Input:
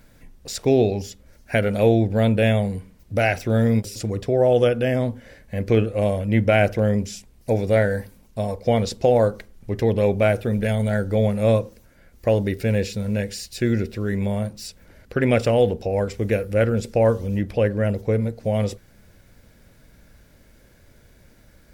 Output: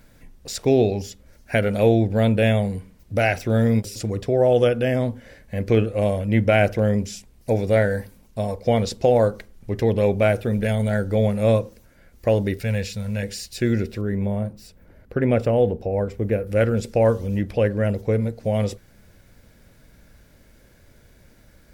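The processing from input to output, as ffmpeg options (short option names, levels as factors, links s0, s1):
-filter_complex "[0:a]asettb=1/sr,asplit=3[s0][s1][s2];[s0]atrim=end=12.594[s3];[s1]atrim=start=12.59:end=13.23,asetpts=PTS-STARTPTS,afade=t=in:d=0.004:c=qsin,afade=t=out:st=0.636:d=0.004:c=qsin,equalizer=f=340:t=o:w=0.94:g=-13.5[s4];[s2]atrim=start=13.226[s5];[s3][s4]acrossfade=d=0.004:c1=hsin:c2=qsin[s6];[s6][s5]acrossfade=d=0.004:c1=qsin:c2=hsin,asettb=1/sr,asplit=3[s7][s8][s9];[s7]atrim=end=14.014[s10];[s8]atrim=start=14.01:end=16.47,asetpts=PTS-STARTPTS,afade=t=in:d=0.004:c=qsin,afade=t=out:st=2.456:d=0.004:c=qsin,equalizer=f=6100:w=0.32:g=-12.5[s11];[s9]atrim=start=16.466[s12];[s10][s11]acrossfade=d=0.004:c1=hsin:c2=qsin[s13];[s13][s12]acrossfade=d=0.004:c1=qsin:c2=hsin"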